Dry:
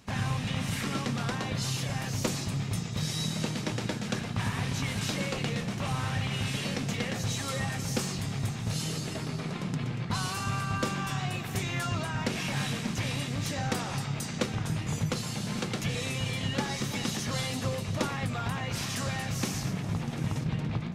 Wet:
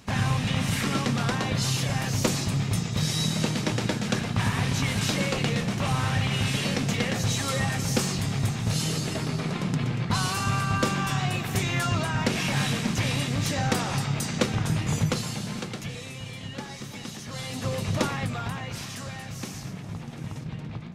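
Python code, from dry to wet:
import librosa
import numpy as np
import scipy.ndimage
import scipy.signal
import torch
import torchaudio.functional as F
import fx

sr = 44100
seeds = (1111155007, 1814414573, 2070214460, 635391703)

y = fx.gain(x, sr, db=fx.line((15.04, 5.5), (16.07, -6.0), (17.26, -6.0), (17.88, 5.5), (19.03, -4.5)))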